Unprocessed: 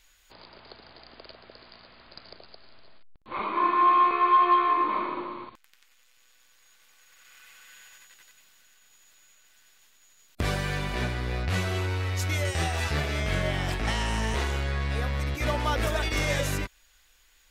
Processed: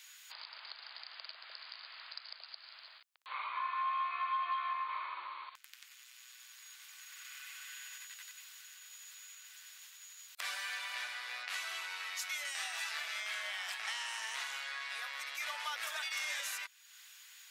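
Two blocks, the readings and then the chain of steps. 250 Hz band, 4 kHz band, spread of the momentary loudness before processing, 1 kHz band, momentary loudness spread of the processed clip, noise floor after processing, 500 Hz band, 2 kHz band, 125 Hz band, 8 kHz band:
under -40 dB, -4.5 dB, 11 LU, -14.0 dB, 16 LU, -59 dBFS, -25.5 dB, -6.5 dB, under -40 dB, -4.0 dB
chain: Bessel high-pass 1500 Hz, order 4; compressor 2:1, threshold -56 dBFS, peak gain reduction 18 dB; gain +8 dB

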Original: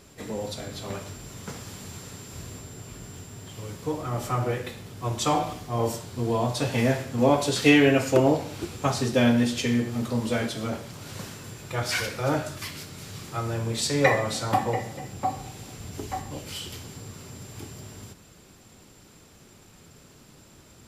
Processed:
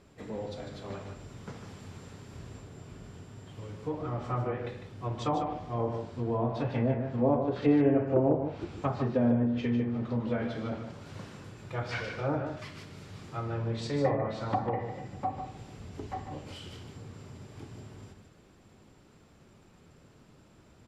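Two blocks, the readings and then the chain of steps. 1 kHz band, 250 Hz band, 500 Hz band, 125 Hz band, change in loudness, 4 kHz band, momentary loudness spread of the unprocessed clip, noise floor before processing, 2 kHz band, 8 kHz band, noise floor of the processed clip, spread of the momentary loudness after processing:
-6.0 dB, -4.5 dB, -5.0 dB, -4.0 dB, -5.5 dB, -15.5 dB, 19 LU, -53 dBFS, -13.0 dB, under -20 dB, -59 dBFS, 20 LU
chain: LPF 1900 Hz 6 dB/oct; treble ducked by the level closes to 920 Hz, closed at -19 dBFS; on a send: echo 0.15 s -7.5 dB; on the sum: gain -5 dB

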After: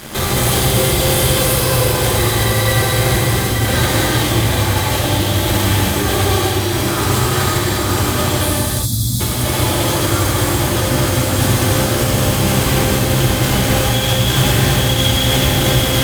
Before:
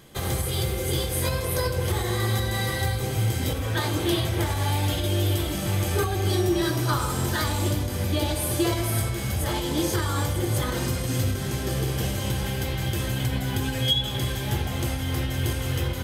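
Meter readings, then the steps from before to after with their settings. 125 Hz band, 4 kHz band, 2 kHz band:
+9.5 dB, +12.0 dB, +12.5 dB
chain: on a send: diffused feedback echo 0.97 s, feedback 67%, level -4 dB; on the sum: negative-ratio compressor -29 dBFS, ratio -0.5; fuzz box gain 38 dB, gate -42 dBFS; spectral gain 8.45–9.2, 290–3300 Hz -25 dB; non-linear reverb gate 0.43 s flat, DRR -6.5 dB; gain -5.5 dB

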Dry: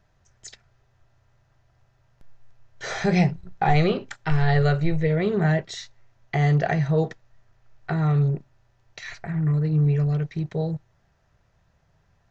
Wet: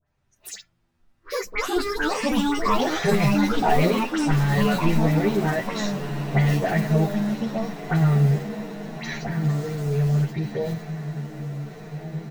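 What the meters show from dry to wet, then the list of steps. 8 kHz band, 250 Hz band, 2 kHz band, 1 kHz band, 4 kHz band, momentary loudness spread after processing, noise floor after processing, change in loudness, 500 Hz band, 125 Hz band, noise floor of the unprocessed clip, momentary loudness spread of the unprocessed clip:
n/a, +3.5 dB, +3.0 dB, +3.5 dB, +6.0 dB, 13 LU, -68 dBFS, 0.0 dB, +2.0 dB, 0.0 dB, -65 dBFS, 14 LU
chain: block floating point 5-bit; echoes that change speed 81 ms, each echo +6 st, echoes 3; in parallel at +2 dB: compressor, threshold -29 dBFS, peak gain reduction 16 dB; on the sum: dispersion highs, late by 72 ms, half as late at 2100 Hz; spectral noise reduction 14 dB; diffused feedback echo 1.583 s, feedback 58%, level -11.5 dB; endless flanger 9.5 ms -0.99 Hz

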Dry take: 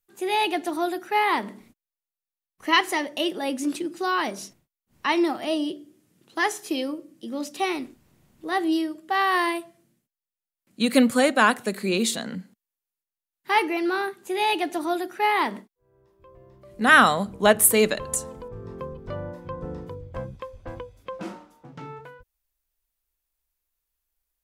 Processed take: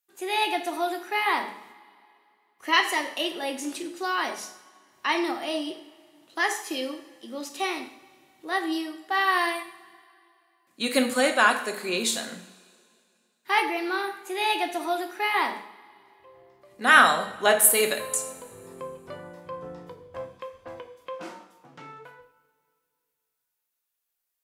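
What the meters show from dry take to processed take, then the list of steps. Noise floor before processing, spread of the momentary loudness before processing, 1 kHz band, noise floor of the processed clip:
under -85 dBFS, 20 LU, -1.5 dB, -81 dBFS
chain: HPF 560 Hz 6 dB/oct; two-slope reverb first 0.57 s, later 2.5 s, from -19 dB, DRR 4 dB; gain -1 dB

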